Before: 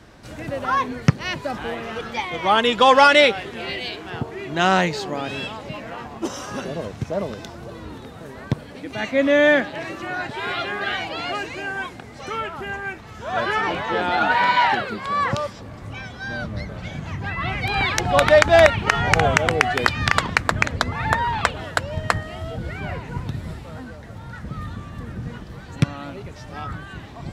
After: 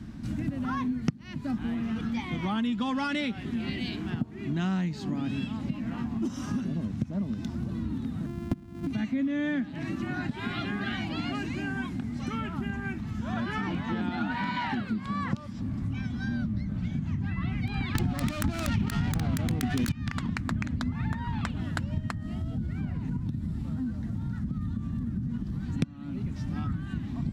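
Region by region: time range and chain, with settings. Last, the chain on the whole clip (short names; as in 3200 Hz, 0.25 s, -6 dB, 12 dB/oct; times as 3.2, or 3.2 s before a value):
8.26–8.87 sample sorter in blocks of 128 samples + high shelf 2300 Hz -10.5 dB
17.95–19.92 self-modulated delay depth 0.39 ms + fast leveller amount 100%
22.11–25.63 bell 2300 Hz -4 dB 1.1 oct + compressor 2.5:1, threshold -34 dBFS
whole clip: resonant low shelf 340 Hz +12 dB, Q 3; compressor 5:1, threshold -22 dBFS; gain -6 dB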